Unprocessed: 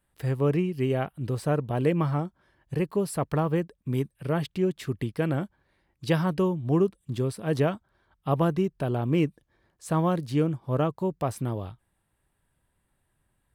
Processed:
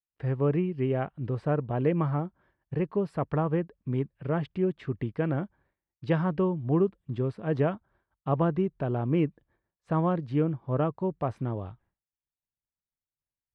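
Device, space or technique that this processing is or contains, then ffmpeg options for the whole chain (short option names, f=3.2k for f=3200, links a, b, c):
hearing-loss simulation: -af "lowpass=2.1k,agate=range=-33dB:threshold=-56dB:ratio=3:detection=peak,volume=-1.5dB"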